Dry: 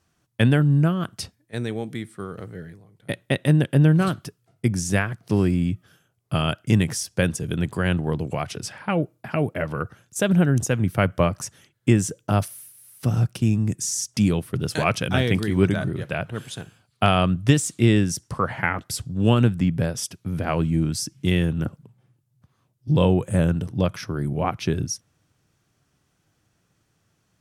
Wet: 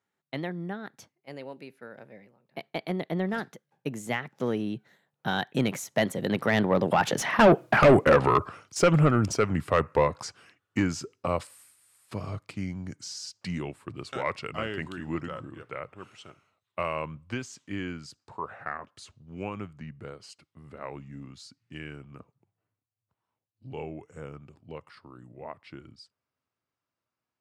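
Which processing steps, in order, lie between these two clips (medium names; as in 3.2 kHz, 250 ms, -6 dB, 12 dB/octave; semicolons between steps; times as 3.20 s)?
Doppler pass-by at 7.71 s, 58 m/s, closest 15 m; overdrive pedal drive 30 dB, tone 1.5 kHz, clips at -6.5 dBFS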